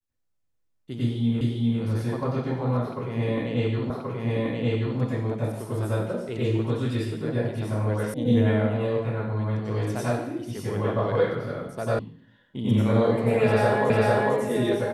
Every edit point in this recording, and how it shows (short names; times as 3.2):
1.41 repeat of the last 0.4 s
3.9 repeat of the last 1.08 s
8.14 sound cut off
11.99 sound cut off
13.9 repeat of the last 0.45 s